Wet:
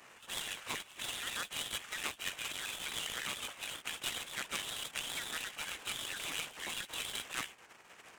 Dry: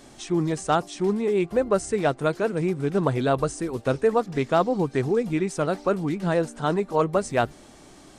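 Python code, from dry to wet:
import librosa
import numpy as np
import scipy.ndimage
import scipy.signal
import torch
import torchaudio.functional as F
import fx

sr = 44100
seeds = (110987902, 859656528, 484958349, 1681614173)

p1 = fx.pitch_trill(x, sr, semitones=-9.5, every_ms=68)
p2 = fx.spec_gate(p1, sr, threshold_db=-20, keep='weak')
p3 = fx.dynamic_eq(p2, sr, hz=2800.0, q=1.2, threshold_db=-49.0, ratio=4.0, max_db=-3)
p4 = fx.over_compress(p3, sr, threshold_db=-49.0, ratio=-1.0)
p5 = p3 + (p4 * 10.0 ** (-2.5 / 20.0))
p6 = fx.freq_invert(p5, sr, carrier_hz=3900)
p7 = fx.highpass(p6, sr, hz=330.0, slope=6)
y = fx.noise_mod_delay(p7, sr, seeds[0], noise_hz=4600.0, depth_ms=0.039)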